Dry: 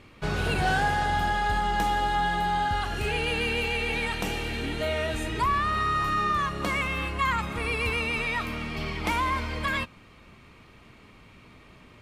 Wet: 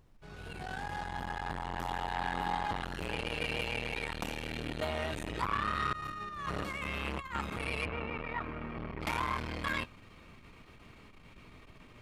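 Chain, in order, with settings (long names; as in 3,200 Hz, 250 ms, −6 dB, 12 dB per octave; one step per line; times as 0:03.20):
fade in at the beginning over 2.29 s
0:05.93–0:07.35: compressor whose output falls as the input rises −31 dBFS, ratio −0.5
0:07.85–0:09.01: Chebyshev low-pass filter 1,400 Hz, order 2
background noise brown −56 dBFS
saturating transformer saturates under 930 Hz
level −2.5 dB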